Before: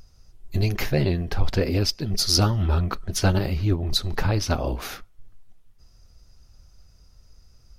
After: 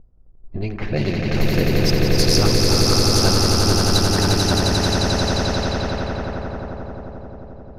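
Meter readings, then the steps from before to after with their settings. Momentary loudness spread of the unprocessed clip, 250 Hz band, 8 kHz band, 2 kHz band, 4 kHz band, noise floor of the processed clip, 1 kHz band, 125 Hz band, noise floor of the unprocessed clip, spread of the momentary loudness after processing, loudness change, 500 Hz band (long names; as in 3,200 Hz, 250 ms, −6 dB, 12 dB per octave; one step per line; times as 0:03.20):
8 LU, +7.5 dB, +8.5 dB, +8.0 dB, +8.0 dB, −44 dBFS, +8.5 dB, +4.0 dB, −55 dBFS, 16 LU, +5.5 dB, +8.5 dB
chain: parametric band 92 Hz −8.5 dB 0.53 octaves
echo that builds up and dies away 88 ms, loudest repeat 8, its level −4 dB
low-pass that shuts in the quiet parts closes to 520 Hz, open at −13 dBFS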